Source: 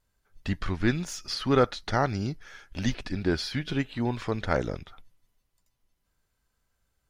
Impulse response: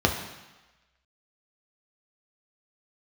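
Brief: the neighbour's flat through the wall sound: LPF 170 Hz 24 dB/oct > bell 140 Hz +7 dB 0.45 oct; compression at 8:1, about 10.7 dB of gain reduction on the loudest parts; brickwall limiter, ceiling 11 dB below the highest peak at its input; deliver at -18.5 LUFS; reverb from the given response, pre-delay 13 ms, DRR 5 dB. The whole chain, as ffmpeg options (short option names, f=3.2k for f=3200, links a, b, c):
-filter_complex "[0:a]acompressor=threshold=-27dB:ratio=8,alimiter=level_in=2dB:limit=-24dB:level=0:latency=1,volume=-2dB,asplit=2[a][b];[1:a]atrim=start_sample=2205,adelay=13[c];[b][c]afir=irnorm=-1:irlink=0,volume=-20dB[d];[a][d]amix=inputs=2:normalize=0,lowpass=f=170:w=0.5412,lowpass=f=170:w=1.3066,equalizer=f=140:t=o:w=0.45:g=7,volume=18.5dB"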